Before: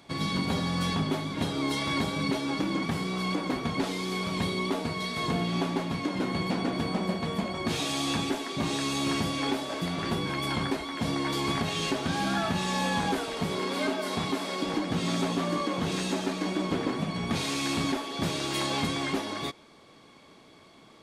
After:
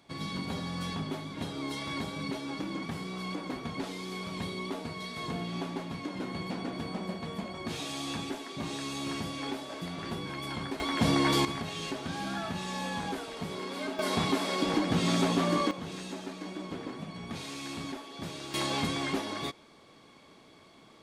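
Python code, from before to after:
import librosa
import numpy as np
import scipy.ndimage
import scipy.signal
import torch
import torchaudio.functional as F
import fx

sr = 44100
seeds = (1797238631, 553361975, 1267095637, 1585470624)

y = fx.gain(x, sr, db=fx.steps((0.0, -7.0), (10.8, 4.0), (11.45, -7.0), (13.99, 1.5), (15.71, -10.0), (18.54, -2.0)))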